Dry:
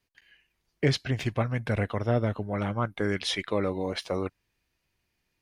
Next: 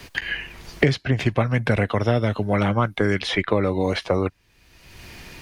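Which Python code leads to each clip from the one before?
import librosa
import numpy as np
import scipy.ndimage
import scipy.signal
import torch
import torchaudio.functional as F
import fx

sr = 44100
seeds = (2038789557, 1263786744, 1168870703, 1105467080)

y = fx.high_shelf(x, sr, hz=8300.0, db=-7.0)
y = fx.band_squash(y, sr, depth_pct=100)
y = y * librosa.db_to_amplitude(7.0)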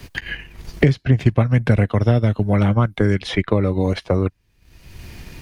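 y = fx.high_shelf(x, sr, hz=7700.0, db=5.0)
y = fx.transient(y, sr, attack_db=1, sustain_db=-7)
y = fx.low_shelf(y, sr, hz=290.0, db=11.0)
y = y * librosa.db_to_amplitude(-2.5)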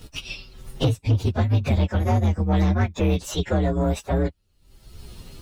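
y = fx.partial_stretch(x, sr, pct=124)
y = 10.0 ** (-13.0 / 20.0) * np.tanh(y / 10.0 ** (-13.0 / 20.0))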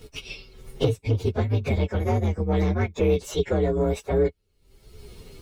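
y = fx.small_body(x, sr, hz=(430.0, 2200.0), ring_ms=45, db=13)
y = y * librosa.db_to_amplitude(-4.0)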